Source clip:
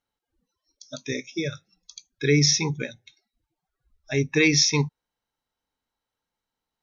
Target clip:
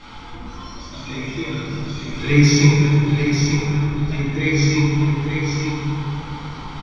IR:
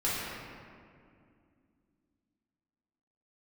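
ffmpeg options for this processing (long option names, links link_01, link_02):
-filter_complex "[0:a]aeval=exprs='val(0)+0.5*0.0376*sgn(val(0))':channel_layout=same,lowpass=frequency=4800:width=0.5412,lowpass=frequency=4800:width=1.3066,aecho=1:1:0.9:0.53,asettb=1/sr,asplit=3[link_01][link_02][link_03];[link_01]atrim=end=2.114[link_04];[link_02]atrim=start=2.11:end=2.67,asetpts=PTS-STARTPTS,afade=type=in:duration=0.004:curve=qsin,afade=type=out:start_time=0.556:duration=0.004:curve=qsin,acontrast=62[link_05];[link_03]atrim=start=2.666[link_06];[link_04][link_05]acrossfade=duration=0.004:curve1=hsin:curve2=qsin[link_07];[link_07][link_06]acrossfade=duration=0.004:curve1=qsin:curve2=hsin,asettb=1/sr,asplit=3[link_08][link_09][link_10];[link_08]atrim=end=4.194[link_11];[link_09]atrim=start=4.19:end=4.59,asetpts=PTS-STARTPTS,afade=type=in:duration=0.004:curve=qsin,afade=type=out:start_time=0.396:duration=0.004:curve=qsin,asuperstop=centerf=2600:order=4:qfactor=6.9[link_12];[link_10]atrim=start=4.586[link_13];[link_11][link_12]acrossfade=duration=0.004:curve1=hsin:curve2=qsin[link_14];[link_14][link_13]acrossfade=duration=0.004:curve1=qsin:curve2=hsin,aecho=1:1:893:0.531[link_15];[1:a]atrim=start_sample=2205,asetrate=28665,aresample=44100[link_16];[link_15][link_16]afir=irnorm=-1:irlink=0,volume=-12dB"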